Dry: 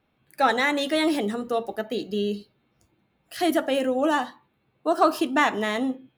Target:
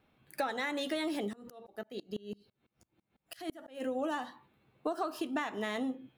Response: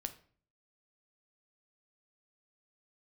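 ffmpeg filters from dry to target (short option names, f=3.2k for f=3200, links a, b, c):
-filter_complex "[0:a]acompressor=threshold=-31dB:ratio=12,asplit=3[a][b][c];[a]afade=t=out:st=1.28:d=0.02[d];[b]aeval=exprs='val(0)*pow(10,-28*if(lt(mod(-6*n/s,1),2*abs(-6)/1000),1-mod(-6*n/s,1)/(2*abs(-6)/1000),(mod(-6*n/s,1)-2*abs(-6)/1000)/(1-2*abs(-6)/1000))/20)':c=same,afade=t=in:st=1.28:d=0.02,afade=t=out:st=3.8:d=0.02[e];[c]afade=t=in:st=3.8:d=0.02[f];[d][e][f]amix=inputs=3:normalize=0"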